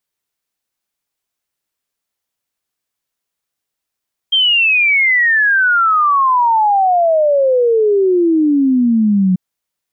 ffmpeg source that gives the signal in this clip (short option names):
-f lavfi -i "aevalsrc='0.355*clip(min(t,5.04-t)/0.01,0,1)*sin(2*PI*3200*5.04/log(180/3200)*(exp(log(180/3200)*t/5.04)-1))':d=5.04:s=44100"